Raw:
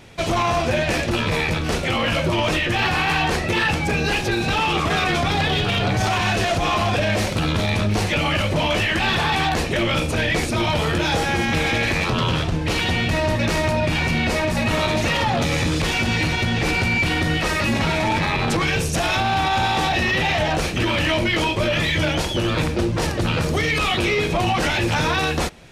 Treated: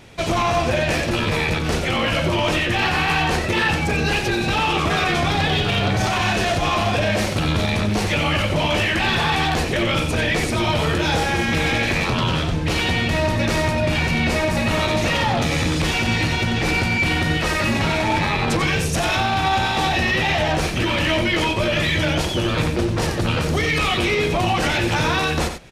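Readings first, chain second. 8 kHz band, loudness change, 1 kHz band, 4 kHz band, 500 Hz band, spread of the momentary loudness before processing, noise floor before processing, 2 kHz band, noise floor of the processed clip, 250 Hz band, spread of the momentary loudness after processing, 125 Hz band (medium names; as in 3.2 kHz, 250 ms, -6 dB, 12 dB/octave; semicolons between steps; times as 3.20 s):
+0.5 dB, +0.5 dB, +0.5 dB, +0.5 dB, +0.5 dB, 2 LU, -24 dBFS, +0.5 dB, -23 dBFS, +0.5 dB, 2 LU, +0.5 dB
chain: delay 91 ms -8.5 dB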